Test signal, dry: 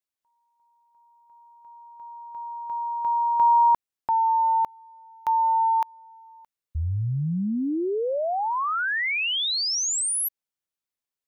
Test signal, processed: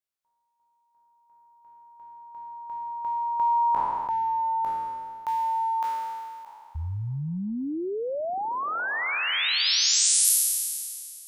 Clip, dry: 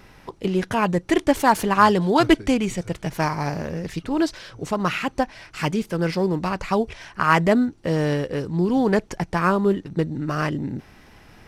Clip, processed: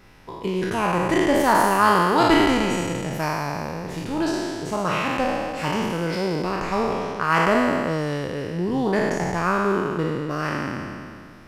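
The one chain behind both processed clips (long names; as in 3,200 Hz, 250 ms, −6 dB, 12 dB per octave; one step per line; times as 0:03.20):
peak hold with a decay on every bin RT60 2.23 s
level −5 dB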